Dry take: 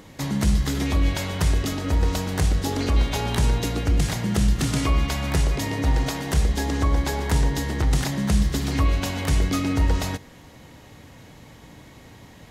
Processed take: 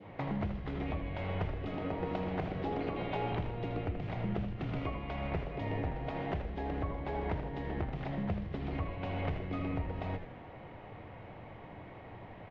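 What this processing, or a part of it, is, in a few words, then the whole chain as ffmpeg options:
bass amplifier: -filter_complex "[0:a]asettb=1/sr,asplit=3[s0][s1][s2];[s0]atrim=end=1.674[s3];[s1]atrim=start=1.67:end=3.32,asetpts=PTS-STARTPTS,afade=t=in:d=0.004:c=qsin,afade=t=out:st=1.646:d=0.004:c=qsin,highpass=f=120:w=0.5412,highpass=f=120:w=1.3066[s4];[s2]atrim=start=3.316[s5];[s3][s4]acrossfade=d=0.004:c1=hsin:c2=qsin[s6];[s6][s5]acrossfade=d=0.004:c1=qsin:c2=hsin,adynamicequalizer=threshold=0.00794:dfrequency=1200:dqfactor=0.86:tfrequency=1200:tqfactor=0.86:attack=5:release=100:ratio=0.375:range=2.5:mode=cutabove:tftype=bell,acompressor=threshold=0.0316:ratio=3,highpass=f=80:w=0.5412,highpass=f=80:w=1.3066,equalizer=f=150:t=q:w=4:g=-6,equalizer=f=250:t=q:w=4:g=-9,equalizer=f=710:t=q:w=4:g=6,equalizer=f=1700:t=q:w=4:g=-6,lowpass=f=2400:w=0.5412,lowpass=f=2400:w=1.3066,asplit=6[s7][s8][s9][s10][s11][s12];[s8]adelay=80,afreqshift=-110,volume=0.376[s13];[s9]adelay=160,afreqshift=-220,volume=0.174[s14];[s10]adelay=240,afreqshift=-330,volume=0.0794[s15];[s11]adelay=320,afreqshift=-440,volume=0.0367[s16];[s12]adelay=400,afreqshift=-550,volume=0.0168[s17];[s7][s13][s14][s15][s16][s17]amix=inputs=6:normalize=0,volume=0.891"

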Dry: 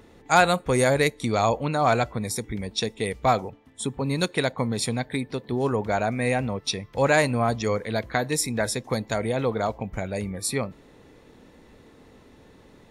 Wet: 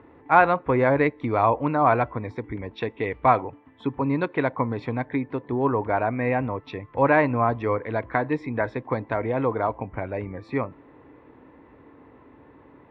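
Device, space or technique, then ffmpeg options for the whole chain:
bass cabinet: -filter_complex "[0:a]asettb=1/sr,asplit=3[s0][s1][s2];[s0]atrim=end=2.734[s3];[s1]atrim=start=2.73:end=4.09,asetpts=PTS-STARTPTS,afade=t=in:d=0.004:c=qsin,afade=t=out:st=1.356:d=0.004:c=qsin,equalizer=f=2900:t=o:w=1.9:g=4[s4];[s2]atrim=start=4.086[s5];[s3][s4]acrossfade=d=0.004:c1=hsin:c2=qsin[s6];[s6][s5]acrossfade=d=0.004:c1=qsin:c2=hsin,highpass=65,equalizer=f=200:t=q:w=4:g=-9,equalizer=f=290:t=q:w=4:g=7,equalizer=f=1000:t=q:w=4:g=8,lowpass=f=2300:w=0.5412,lowpass=f=2300:w=1.3066"

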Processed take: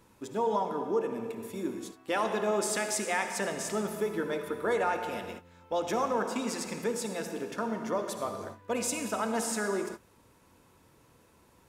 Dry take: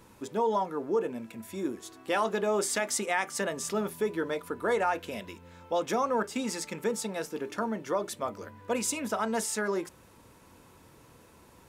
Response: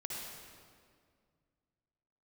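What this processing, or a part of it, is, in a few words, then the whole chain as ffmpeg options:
keyed gated reverb: -filter_complex "[0:a]asplit=3[s0][s1][s2];[1:a]atrim=start_sample=2205[s3];[s1][s3]afir=irnorm=-1:irlink=0[s4];[s2]apad=whole_len=515379[s5];[s4][s5]sidechaingate=range=0.0224:threshold=0.00501:ratio=16:detection=peak,volume=0.891[s6];[s0][s6]amix=inputs=2:normalize=0,volume=0.531"

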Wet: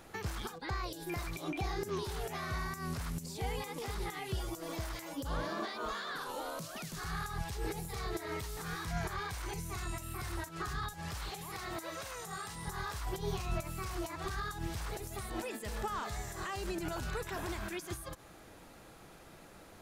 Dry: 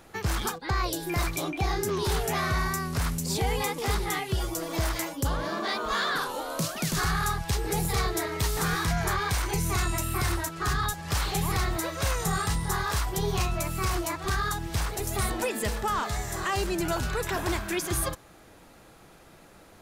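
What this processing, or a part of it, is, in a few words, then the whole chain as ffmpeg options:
de-esser from a sidechain: -filter_complex "[0:a]asplit=2[s0][s1];[s1]highpass=f=6700:p=1,apad=whole_len=874040[s2];[s0][s2]sidechaincompress=threshold=0.00501:ratio=5:attack=2.4:release=93,asettb=1/sr,asplit=3[s3][s4][s5];[s3]atrim=end=11.304[s6];[s4]atrim=start=11.3:end=12.67,asetpts=PTS-STARTPTS,afade=t=in:d=0.004:c=qsin,afade=t=out:st=1.366:d=0.004:c=qsin,highpass=f=280:p=1[s7];[s5]atrim=start=12.666[s8];[s6][s7]acrossfade=d=0.004:c1=hsin:c2=qsin[s9];[s9][s8]acrossfade=d=0.004:c1=qsin:c2=hsin,volume=0.794"

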